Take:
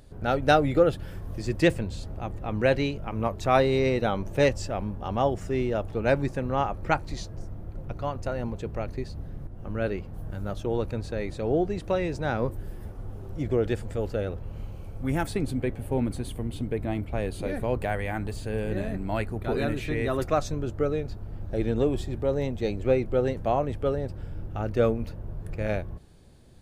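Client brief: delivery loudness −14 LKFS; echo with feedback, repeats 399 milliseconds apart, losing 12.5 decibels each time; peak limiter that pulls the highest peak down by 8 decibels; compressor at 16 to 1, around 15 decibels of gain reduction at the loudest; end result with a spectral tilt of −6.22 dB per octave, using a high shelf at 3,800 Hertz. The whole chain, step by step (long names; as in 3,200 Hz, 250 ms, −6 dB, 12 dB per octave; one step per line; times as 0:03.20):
high-shelf EQ 3,800 Hz +4.5 dB
downward compressor 16 to 1, threshold −30 dBFS
brickwall limiter −25.5 dBFS
repeating echo 399 ms, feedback 24%, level −12.5 dB
level +23.5 dB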